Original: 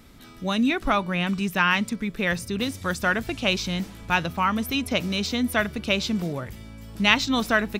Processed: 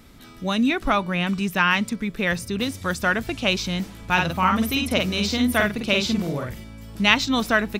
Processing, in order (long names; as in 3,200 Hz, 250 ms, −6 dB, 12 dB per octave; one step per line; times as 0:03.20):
0:04.13–0:06.64: double-tracking delay 49 ms −3 dB
level +1.5 dB